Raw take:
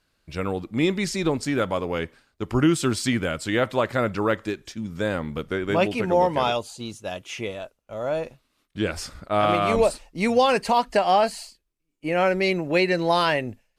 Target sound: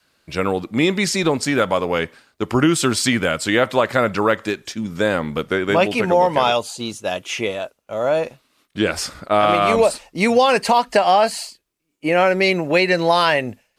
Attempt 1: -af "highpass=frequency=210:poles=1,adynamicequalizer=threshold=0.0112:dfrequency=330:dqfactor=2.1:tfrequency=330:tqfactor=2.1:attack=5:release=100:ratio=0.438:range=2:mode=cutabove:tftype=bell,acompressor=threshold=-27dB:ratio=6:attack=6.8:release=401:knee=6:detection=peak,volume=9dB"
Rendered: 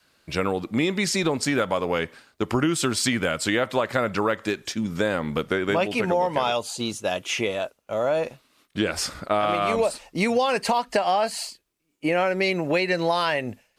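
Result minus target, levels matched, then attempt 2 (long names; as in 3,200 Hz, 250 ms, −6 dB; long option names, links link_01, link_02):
downward compressor: peak gain reduction +8 dB
-af "highpass=frequency=210:poles=1,adynamicequalizer=threshold=0.0112:dfrequency=330:dqfactor=2.1:tfrequency=330:tqfactor=2.1:attack=5:release=100:ratio=0.438:range=2:mode=cutabove:tftype=bell,acompressor=threshold=-17.5dB:ratio=6:attack=6.8:release=401:knee=6:detection=peak,volume=9dB"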